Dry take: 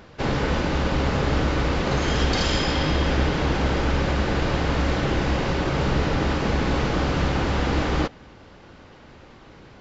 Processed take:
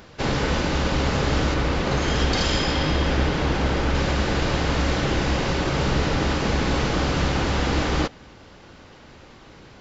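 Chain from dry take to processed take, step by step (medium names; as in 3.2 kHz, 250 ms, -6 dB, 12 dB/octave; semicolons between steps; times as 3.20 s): treble shelf 4.1 kHz +8.5 dB, from 1.54 s +2 dB, from 3.95 s +8 dB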